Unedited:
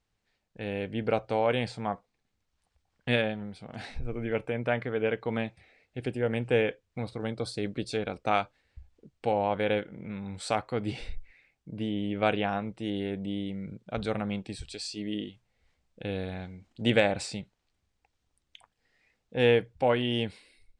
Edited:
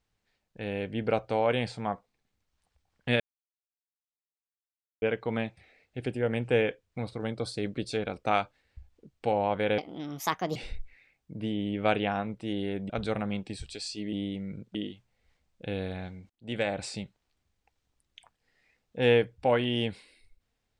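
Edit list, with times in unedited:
3.20–5.02 s: mute
9.78–10.93 s: speed 148%
13.27–13.89 s: move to 15.12 s
16.67–17.38 s: fade in

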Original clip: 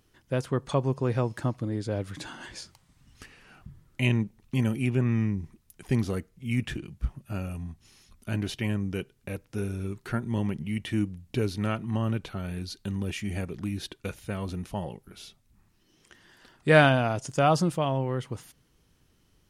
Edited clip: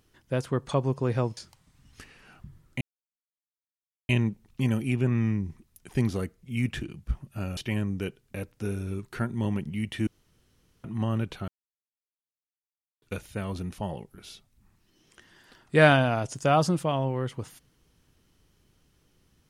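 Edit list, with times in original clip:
1.37–2.59 s: delete
4.03 s: insert silence 1.28 s
7.51–8.50 s: delete
11.00–11.77 s: room tone
12.41–13.95 s: mute

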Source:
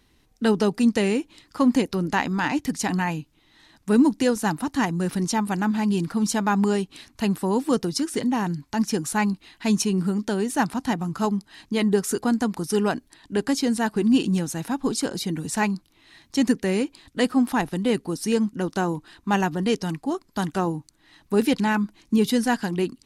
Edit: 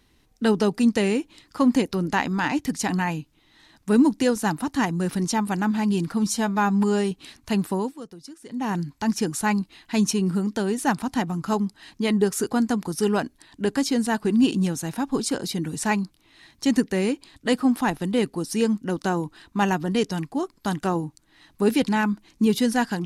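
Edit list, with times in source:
6.26–6.83 s: stretch 1.5×
7.44–8.44 s: dip -17 dB, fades 0.24 s

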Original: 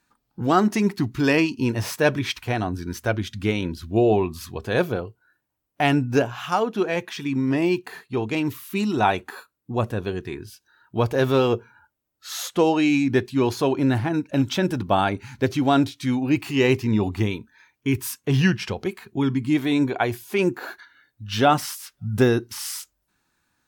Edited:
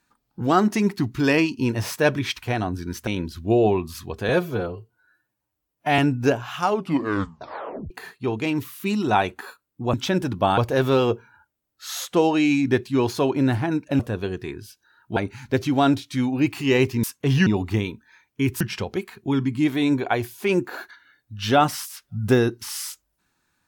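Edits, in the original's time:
3.07–3.53 s: delete
4.75–5.88 s: stretch 1.5×
6.55 s: tape stop 1.25 s
9.83–11.00 s: swap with 14.42–15.06 s
18.07–18.50 s: move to 16.93 s

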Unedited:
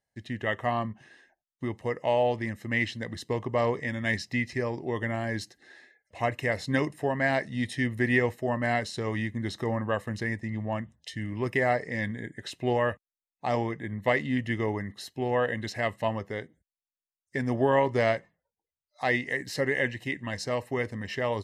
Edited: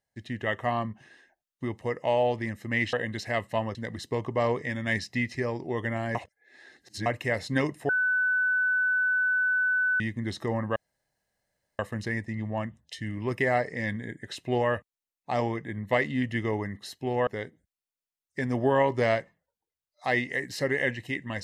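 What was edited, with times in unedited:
5.33–6.24 s: reverse
7.07–9.18 s: bleep 1.5 kHz -22 dBFS
9.94 s: insert room tone 1.03 s
15.42–16.24 s: move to 2.93 s

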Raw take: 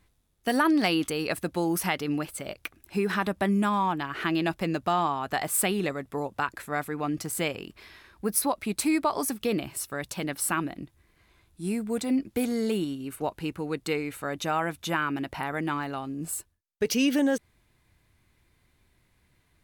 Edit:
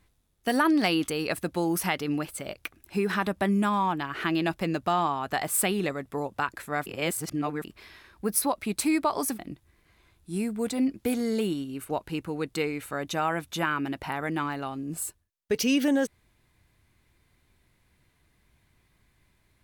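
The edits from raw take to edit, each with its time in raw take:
6.86–7.64 s: reverse
9.39–10.70 s: delete

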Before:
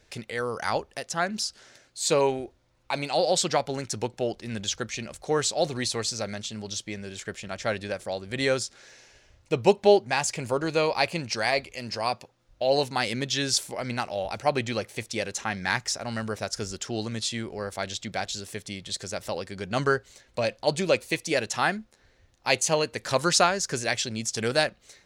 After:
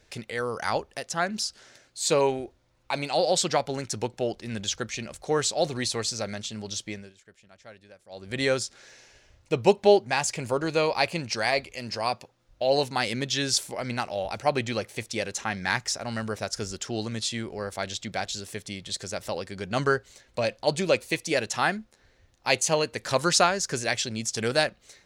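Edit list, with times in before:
6.91–8.31 s: dip -19.5 dB, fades 0.22 s

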